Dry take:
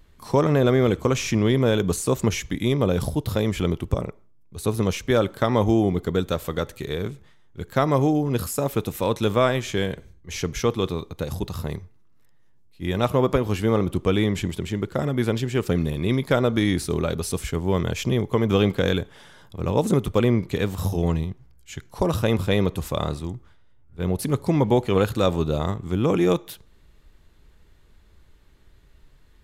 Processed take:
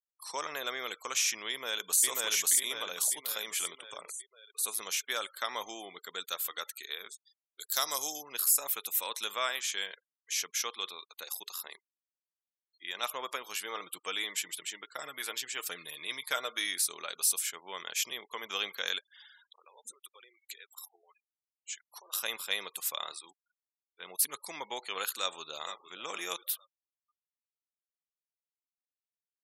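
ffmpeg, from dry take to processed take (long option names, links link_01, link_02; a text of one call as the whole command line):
ffmpeg -i in.wav -filter_complex "[0:a]asplit=2[link_01][link_02];[link_02]afade=type=in:start_time=1.49:duration=0.01,afade=type=out:start_time=2.05:duration=0.01,aecho=0:1:540|1080|1620|2160|2700|3240|3780|4320:1|0.55|0.3025|0.166375|0.0915063|0.0503284|0.0276806|0.0152244[link_03];[link_01][link_03]amix=inputs=2:normalize=0,asplit=3[link_04][link_05][link_06];[link_04]afade=type=out:start_time=7.09:duration=0.02[link_07];[link_05]highshelf=frequency=3300:width_type=q:width=1.5:gain=10,afade=type=in:start_time=7.09:duration=0.02,afade=type=out:start_time=8.21:duration=0.02[link_08];[link_06]afade=type=in:start_time=8.21:duration=0.02[link_09];[link_07][link_08][link_09]amix=inputs=3:normalize=0,asettb=1/sr,asplit=3[link_10][link_11][link_12];[link_10]atrim=end=10.534[link_13];[link_11]atrim=start=10.53:end=13.01,asetpts=PTS-STARTPTS,afade=type=in:duration=0.004:curve=qsin,afade=type=out:start_time=2.476:duration=0.004:curve=qsin,highpass=120[link_14];[link_12]atrim=start=13.006[link_15];[link_13][link_14]acrossfade=duration=0.004:curve1=hsin:curve2=qsin[link_16];[link_16][link_15]acrossfade=duration=0.004:curve1=qsin:curve2=hsin,asettb=1/sr,asplit=3[link_17][link_18][link_19];[link_17]atrim=end=13.654[link_20];[link_18]atrim=start=13.65:end=16.67,asetpts=PTS-STARTPTS,afade=type=in:duration=0.004:curve=qsin,afade=type=out:start_time=3.016:duration=0.004:curve=qsin,aecho=1:1:6.5:0.39,atrim=end_sample=133182[link_21];[link_19]atrim=start=16.666[link_22];[link_20][link_21]acrossfade=duration=0.004:curve1=hsin:curve2=qsin[link_23];[link_23][link_22]acrossfade=duration=0.004:curve1=qsin:curve2=hsin,asplit=3[link_24][link_25][link_26];[link_24]afade=type=out:start_time=18.98:duration=0.02[link_27];[link_25]acompressor=threshold=-34dB:ratio=8:attack=3.2:release=140:knee=1:detection=peak,afade=type=in:start_time=18.98:duration=0.02,afade=type=out:start_time=22.12:duration=0.02[link_28];[link_26]afade=type=in:start_time=22.12:duration=0.02[link_29];[link_27][link_28][link_29]amix=inputs=3:normalize=0,asplit=2[link_30][link_31];[link_31]afade=type=in:start_time=25.09:duration=0.01,afade=type=out:start_time=25.97:duration=0.01,aecho=0:1:460|920|1380|1840:0.237137|0.0829981|0.0290493|0.0101673[link_32];[link_30][link_32]amix=inputs=2:normalize=0,highpass=1200,afftfilt=real='re*gte(hypot(re,im),0.00501)':imag='im*gte(hypot(re,im),0.00501)':win_size=1024:overlap=0.75,aemphasis=mode=production:type=75kf,volume=-7dB" out.wav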